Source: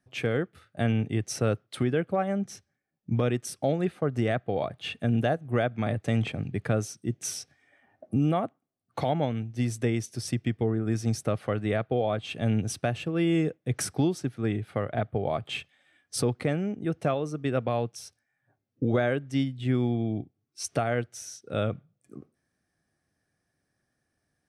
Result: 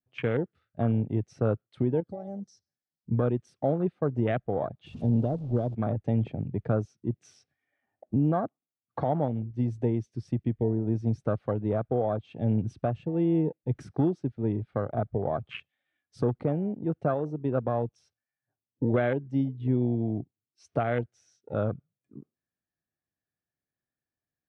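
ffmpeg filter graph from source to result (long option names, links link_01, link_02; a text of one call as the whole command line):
ffmpeg -i in.wav -filter_complex "[0:a]asettb=1/sr,asplit=3[link_01][link_02][link_03];[link_01]atrim=end=2.004[link_04];[link_02]atrim=start=2:end=3.1,asetpts=PTS-STARTPTS,afade=type=in:duration=0.004:curve=qsin,afade=type=out:start_time=1.096:duration=0.004:curve=qsin,highshelf=frequency=3600:width_type=q:width=3:gain=11.5,acompressor=threshold=-40dB:ratio=2:attack=3.2:release=140:knee=1:detection=peak[link_05];[link_03]atrim=start=3.096[link_06];[link_04][link_05]acrossfade=duration=0.004:curve1=hsin:curve2=qsin[link_07];[link_07][link_06]acrossfade=duration=0.004:curve1=qsin:curve2=hsin,asettb=1/sr,asplit=3[link_08][link_09][link_10];[link_08]atrim=end=4.864[link_11];[link_09]atrim=start=4.86:end=5.75,asetpts=PTS-STARTPTS,afade=type=in:duration=0.004:curve=qsin,afade=type=out:start_time=0.886:duration=0.004:curve=qsin,aeval=exprs='val(0)+0.5*0.0251*sgn(val(0))':channel_layout=same,equalizer=frequency=1800:width_type=o:width=0.75:gain=-14,acrossover=split=470|3000[link_12][link_13][link_14];[link_13]acompressor=threshold=-40dB:ratio=2.5:attack=3.2:release=140:knee=2.83:detection=peak[link_15];[link_12][link_15][link_14]amix=inputs=3:normalize=0[link_16];[link_10]atrim=start=5.746[link_17];[link_11][link_16]acrossfade=duration=0.004:curve1=hsin:curve2=qsin[link_18];[link_18][link_17]acrossfade=duration=0.004:curve1=qsin:curve2=hsin,afwtdn=0.0224,lowpass=4200,adynamicequalizer=threshold=0.00631:dfrequency=1800:dqfactor=0.91:tfrequency=1800:tqfactor=0.91:attack=5:release=100:ratio=0.375:range=2.5:mode=cutabove:tftype=bell" out.wav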